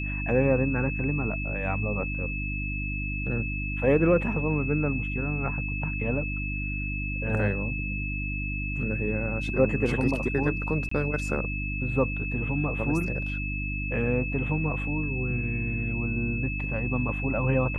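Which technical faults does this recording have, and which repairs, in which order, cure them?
mains hum 50 Hz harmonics 6 −32 dBFS
whistle 2,600 Hz −33 dBFS
0:10.89–0:10.91: drop-out 24 ms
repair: notch filter 2,600 Hz, Q 30
hum removal 50 Hz, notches 6
repair the gap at 0:10.89, 24 ms

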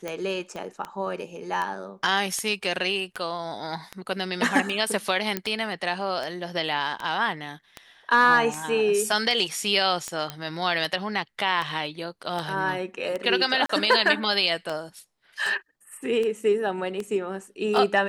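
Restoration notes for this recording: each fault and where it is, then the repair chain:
scratch tick 78 rpm −17 dBFS
0:00.56: click −23 dBFS
0:05.37: click −10 dBFS
0:10.30: click −14 dBFS
0:13.66–0:13.69: drop-out 34 ms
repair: click removal
repair the gap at 0:13.66, 34 ms

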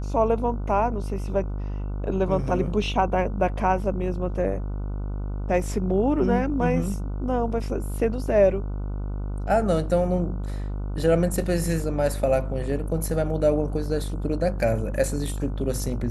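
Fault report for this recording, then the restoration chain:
mains buzz 50 Hz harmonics 30 −29 dBFS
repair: hum removal 50 Hz, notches 30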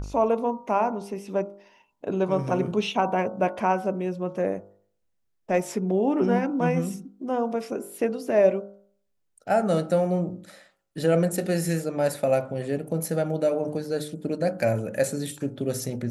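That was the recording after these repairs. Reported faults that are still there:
none of them is left

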